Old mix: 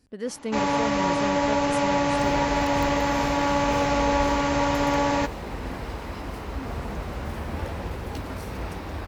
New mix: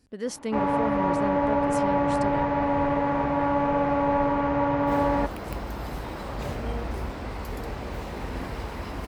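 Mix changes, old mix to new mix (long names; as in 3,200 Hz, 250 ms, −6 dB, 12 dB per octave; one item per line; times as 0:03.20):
first sound: add low-pass filter 1,400 Hz 12 dB per octave
second sound: entry +2.70 s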